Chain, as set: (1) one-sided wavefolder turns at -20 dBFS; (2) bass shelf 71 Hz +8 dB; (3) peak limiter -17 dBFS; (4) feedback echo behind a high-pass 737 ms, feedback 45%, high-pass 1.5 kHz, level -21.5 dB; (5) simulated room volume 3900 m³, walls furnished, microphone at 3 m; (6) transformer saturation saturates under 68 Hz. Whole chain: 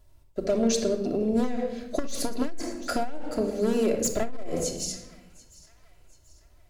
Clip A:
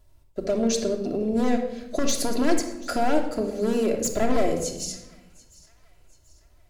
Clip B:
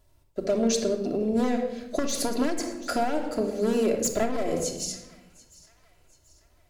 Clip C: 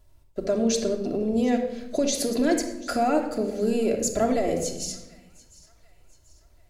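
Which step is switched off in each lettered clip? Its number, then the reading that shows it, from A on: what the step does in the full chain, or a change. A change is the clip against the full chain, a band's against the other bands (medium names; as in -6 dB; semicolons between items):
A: 6, 1 kHz band +3.5 dB; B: 2, 1 kHz band +2.5 dB; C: 1, distortion -11 dB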